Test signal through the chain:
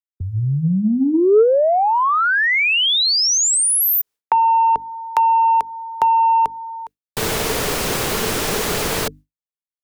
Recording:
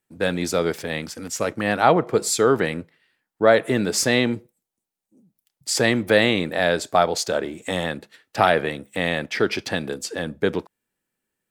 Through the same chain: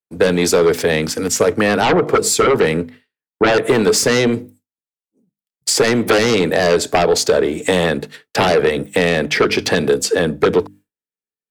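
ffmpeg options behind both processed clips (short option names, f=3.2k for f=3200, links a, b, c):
-filter_complex "[0:a]bandreject=f=50:t=h:w=6,bandreject=f=100:t=h:w=6,bandreject=f=150:t=h:w=6,bandreject=f=200:t=h:w=6,bandreject=f=250:t=h:w=6,bandreject=f=300:t=h:w=6,agate=range=-33dB:threshold=-45dB:ratio=3:detection=peak,equalizer=f=440:t=o:w=0.2:g=9.5,aeval=exprs='1*sin(PI/2*3.98*val(0)/1)':c=same,acrossover=split=130|440[a][b][c];[a]acompressor=threshold=-28dB:ratio=4[d];[b]acompressor=threshold=-13dB:ratio=4[e];[c]acompressor=threshold=-12dB:ratio=4[f];[d][e][f]amix=inputs=3:normalize=0,volume=-3dB"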